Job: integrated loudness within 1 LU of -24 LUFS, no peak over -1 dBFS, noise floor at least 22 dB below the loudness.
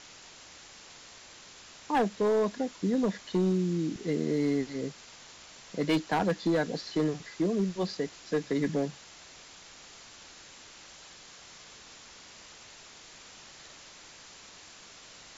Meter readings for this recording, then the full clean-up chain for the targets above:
clipped 0.8%; flat tops at -21.0 dBFS; noise floor -51 dBFS; noise floor target -52 dBFS; loudness -30.0 LUFS; peak -21.0 dBFS; loudness target -24.0 LUFS
-> clip repair -21 dBFS; denoiser 6 dB, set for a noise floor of -51 dBFS; gain +6 dB

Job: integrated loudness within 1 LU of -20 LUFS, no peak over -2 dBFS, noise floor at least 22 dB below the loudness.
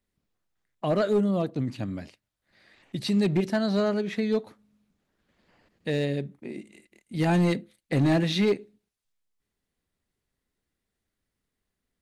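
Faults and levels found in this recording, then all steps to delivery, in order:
clipped 0.7%; flat tops at -17.0 dBFS; loudness -26.5 LUFS; peak -17.0 dBFS; loudness target -20.0 LUFS
-> clip repair -17 dBFS; gain +6.5 dB

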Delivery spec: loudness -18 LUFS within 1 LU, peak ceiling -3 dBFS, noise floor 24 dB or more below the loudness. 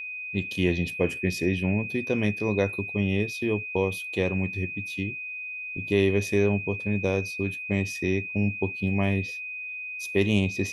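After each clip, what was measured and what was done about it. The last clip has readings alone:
steady tone 2500 Hz; tone level -33 dBFS; loudness -27.0 LUFS; peak -9.5 dBFS; loudness target -18.0 LUFS
-> notch 2500 Hz, Q 30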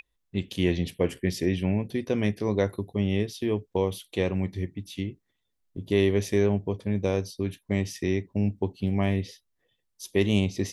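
steady tone none; loudness -28.0 LUFS; peak -10.0 dBFS; loudness target -18.0 LUFS
-> gain +10 dB; limiter -3 dBFS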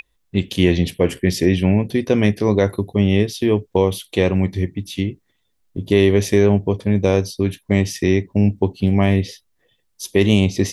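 loudness -18.5 LUFS; peak -3.0 dBFS; noise floor -67 dBFS

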